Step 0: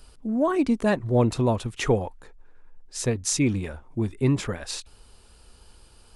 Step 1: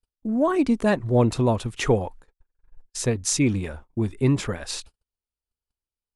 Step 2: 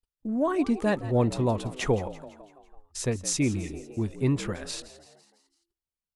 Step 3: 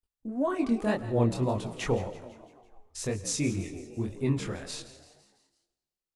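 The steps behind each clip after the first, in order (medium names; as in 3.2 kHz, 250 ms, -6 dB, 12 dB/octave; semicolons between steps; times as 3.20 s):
gate -42 dBFS, range -44 dB; trim +1.5 dB
spectral replace 3.56–3.91 s, 260–1800 Hz both; frequency-shifting echo 167 ms, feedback 54%, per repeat +66 Hz, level -16 dB; trim -4.5 dB
chorus 1.9 Hz, delay 19.5 ms, depth 7.1 ms; on a send at -17.5 dB: reverberation RT60 1.3 s, pre-delay 88 ms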